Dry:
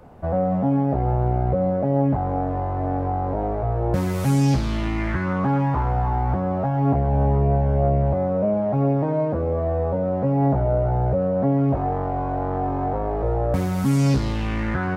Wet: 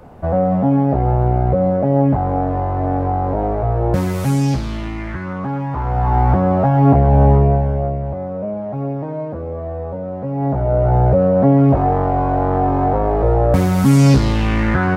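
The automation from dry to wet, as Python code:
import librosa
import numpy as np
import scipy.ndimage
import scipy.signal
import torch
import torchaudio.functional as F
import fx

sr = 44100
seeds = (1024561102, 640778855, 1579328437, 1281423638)

y = fx.gain(x, sr, db=fx.line((3.85, 5.5), (5.04, -2.0), (5.68, -2.0), (6.19, 8.5), (7.32, 8.5), (7.99, -3.0), (10.27, -3.0), (10.95, 8.0)))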